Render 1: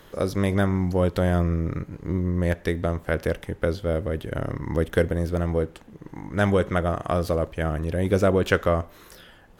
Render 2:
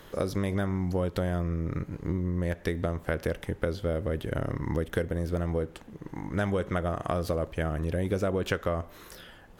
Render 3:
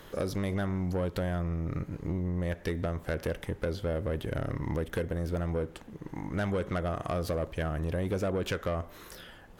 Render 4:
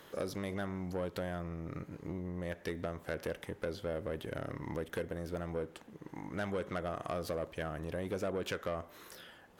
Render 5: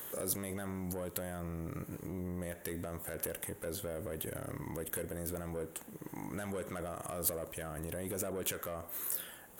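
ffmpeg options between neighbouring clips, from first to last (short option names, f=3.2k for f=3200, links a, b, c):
-af "acompressor=threshold=-25dB:ratio=5"
-af "asoftclip=type=tanh:threshold=-23.5dB"
-af "highpass=f=220:p=1,volume=-4dB"
-af "alimiter=level_in=9dB:limit=-24dB:level=0:latency=1:release=31,volume=-9dB,aexciter=amount=4.5:drive=8.9:freq=7.1k,volume=2.5dB"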